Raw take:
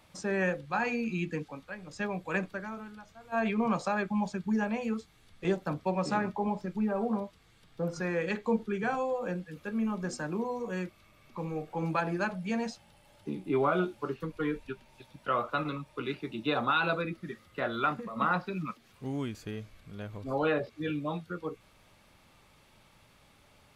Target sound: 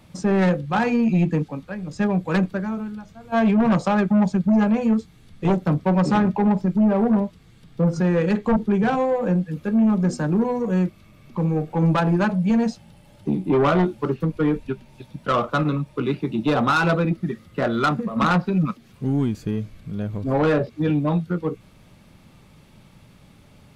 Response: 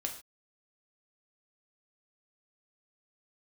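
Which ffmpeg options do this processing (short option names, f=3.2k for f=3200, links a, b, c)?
-filter_complex "[0:a]asplit=2[a][b];[b]adynamicsmooth=sensitivity=2.5:basefreq=610,volume=0dB[c];[a][c]amix=inputs=2:normalize=0,equalizer=f=170:t=o:w=1.3:g=7,aeval=exprs='0.376*sin(PI/2*2*val(0)/0.376)':c=same,volume=-5dB"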